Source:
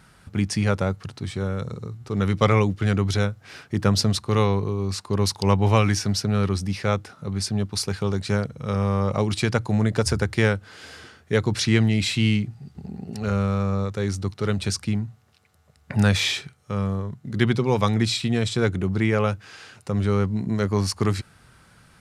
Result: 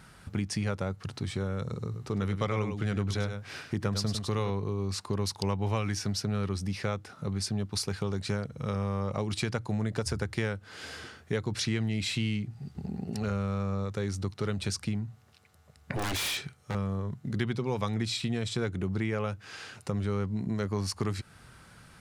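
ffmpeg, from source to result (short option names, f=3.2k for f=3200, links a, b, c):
-filter_complex "[0:a]asettb=1/sr,asplit=3[a][b][c];[a]atrim=end=1.844[d];[b]atrim=start=1.84:end=4.5,asetpts=PTS-STARTPTS,afade=t=in:d=0.004:c=qsin,afade=t=out:st=2.656:d=0.004:c=qsin,aecho=1:1:101:0.355,atrim=end_sample=117306[e];[c]atrim=start=4.496[f];[d][e]acrossfade=d=0.004:c1=hsin:c2=qsin[g];[g][f]acrossfade=d=0.004:c1=qsin:c2=hsin,asettb=1/sr,asplit=3[h][i][j];[h]atrim=end=15.954[k];[i]atrim=start=15.95:end=16.75,asetpts=PTS-STARTPTS,afade=t=in:d=0.004:c=qsin,afade=t=out:st=0.796:d=0.004:c=qsin,aeval=exprs='0.0708*(abs(mod(val(0)/0.0708+3,4)-2)-1)':c=same[l];[j]atrim=start=16.746[m];[k][l]acrossfade=d=0.004:c1=hsin:c2=qsin[n];[n][m]acrossfade=d=0.004:c1=qsin:c2=hsin,acompressor=threshold=-30dB:ratio=3"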